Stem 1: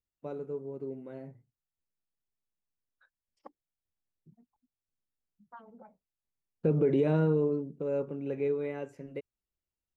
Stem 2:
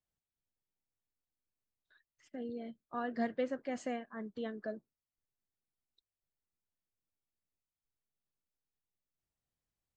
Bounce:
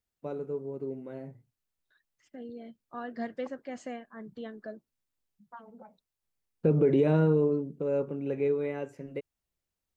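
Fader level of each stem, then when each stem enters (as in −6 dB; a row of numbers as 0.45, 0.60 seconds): +2.5, −1.0 decibels; 0.00, 0.00 seconds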